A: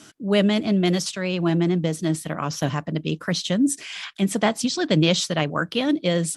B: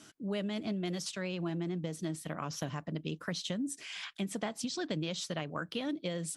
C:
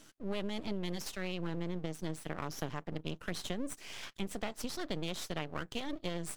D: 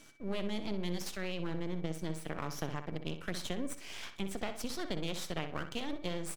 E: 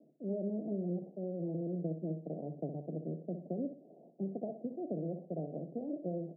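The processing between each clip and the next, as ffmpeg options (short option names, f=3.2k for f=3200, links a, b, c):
-af "acompressor=threshold=-24dB:ratio=6,volume=-8.5dB"
-af "aeval=exprs='max(val(0),0)':c=same,volume=1dB"
-filter_complex "[0:a]aeval=exprs='val(0)+0.000631*sin(2*PI*2300*n/s)':c=same,asplit=2[a][b];[b]adelay=62,lowpass=f=4.2k:p=1,volume=-9dB,asplit=2[c][d];[d]adelay=62,lowpass=f=4.2k:p=1,volume=0.35,asplit=2[e][f];[f]adelay=62,lowpass=f=4.2k:p=1,volume=0.35,asplit=2[g][h];[h]adelay=62,lowpass=f=4.2k:p=1,volume=0.35[i];[a][c][e][g][i]amix=inputs=5:normalize=0"
-af "asuperpass=centerf=320:order=20:qfactor=0.57,volume=1.5dB"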